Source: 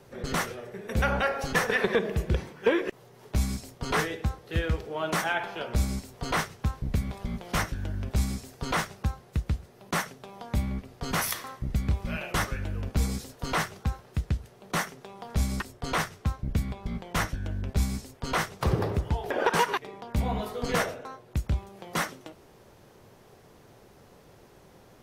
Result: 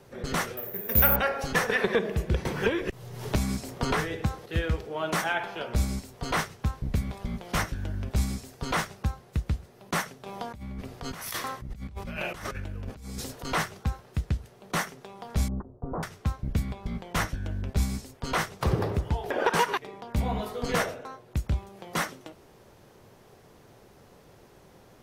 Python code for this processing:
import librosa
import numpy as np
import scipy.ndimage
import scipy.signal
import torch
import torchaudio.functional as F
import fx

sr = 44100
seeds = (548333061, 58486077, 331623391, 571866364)

y = fx.resample_bad(x, sr, factor=3, down='none', up='zero_stuff', at=(0.57, 1.16))
y = fx.band_squash(y, sr, depth_pct=100, at=(2.45, 4.46))
y = fx.over_compress(y, sr, threshold_db=-37.0, ratio=-1.0, at=(10.26, 13.45))
y = fx.bessel_lowpass(y, sr, hz=640.0, order=8, at=(15.48, 16.03))